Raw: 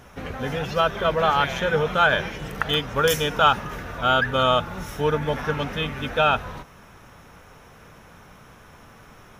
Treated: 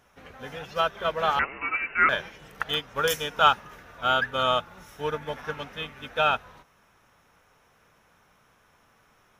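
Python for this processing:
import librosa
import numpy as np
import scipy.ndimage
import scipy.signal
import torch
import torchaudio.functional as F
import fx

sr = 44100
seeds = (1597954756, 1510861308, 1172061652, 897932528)

y = fx.low_shelf(x, sr, hz=390.0, db=-8.0)
y = fx.freq_invert(y, sr, carrier_hz=2800, at=(1.39, 2.09))
y = fx.upward_expand(y, sr, threshold_db=-37.0, expansion=1.5)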